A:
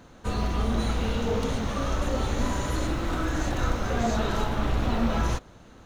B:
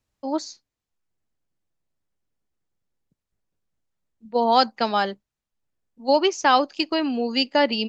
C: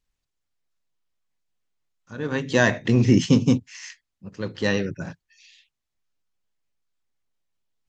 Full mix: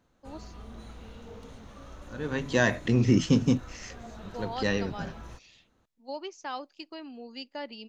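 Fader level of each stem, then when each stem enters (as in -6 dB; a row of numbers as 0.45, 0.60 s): -19.0, -19.0, -5.0 dB; 0.00, 0.00, 0.00 s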